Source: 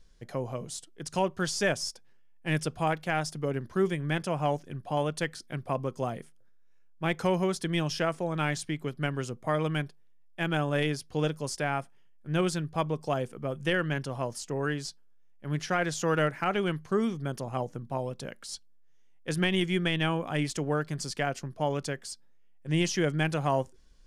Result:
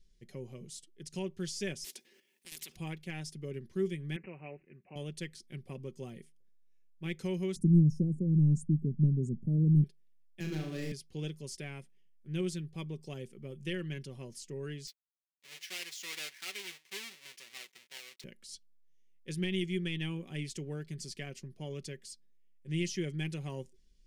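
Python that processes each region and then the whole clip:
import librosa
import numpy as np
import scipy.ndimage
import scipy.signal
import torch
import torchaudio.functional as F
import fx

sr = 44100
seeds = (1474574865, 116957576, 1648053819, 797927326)

y = fx.chain(x, sr, fx.highpass(hz=290.0, slope=24),
    fx.level_steps(step_db=10),
    fx.spectral_comp(ratio=10.0), at=(1.84, 2.76))
y = fx.chain(y, sr, fx.highpass(hz=480.0, slope=6),
    fx.resample_bad(factor=8, down='none', up='filtered'), at=(4.16, 4.96))
y = fx.chain(y, sr, fx.envelope_sharpen(power=1.5),
    fx.ellip_bandstop(low_hz=530.0, high_hz=7300.0, order=3, stop_db=40),
    fx.low_shelf_res(hz=330.0, db=13.0, q=1.5), at=(7.56, 9.84))
y = fx.chain(y, sr, fx.median_filter(points=15),
    fx.room_flutter(wall_m=6.5, rt60_s=0.62),
    fx.band_squash(depth_pct=40), at=(10.4, 10.92))
y = fx.chain(y, sr, fx.halfwave_hold(),
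    fx.highpass(hz=1200.0, slope=12),
    fx.high_shelf(hz=7200.0, db=-8.0), at=(14.87, 18.24))
y = fx.band_shelf(y, sr, hz=950.0, db=-15.0, octaves=1.7)
y = y + 0.42 * np.pad(y, (int(5.3 * sr / 1000.0), 0))[:len(y)]
y = y * librosa.db_to_amplitude(-8.5)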